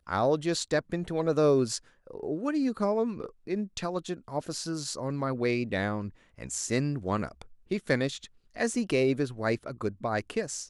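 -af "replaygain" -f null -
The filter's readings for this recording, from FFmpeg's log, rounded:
track_gain = +9.6 dB
track_peak = 0.201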